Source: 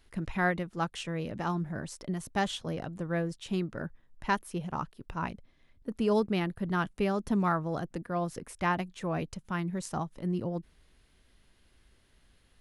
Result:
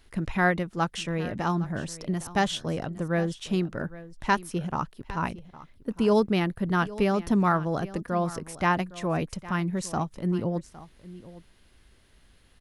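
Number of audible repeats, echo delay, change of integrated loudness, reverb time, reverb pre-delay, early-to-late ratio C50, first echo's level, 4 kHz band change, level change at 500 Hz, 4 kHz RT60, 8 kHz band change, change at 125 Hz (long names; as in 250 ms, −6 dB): 1, 810 ms, +5.0 dB, no reverb audible, no reverb audible, no reverb audible, −17.5 dB, +5.5 dB, +5.0 dB, no reverb audible, +6.0 dB, +5.0 dB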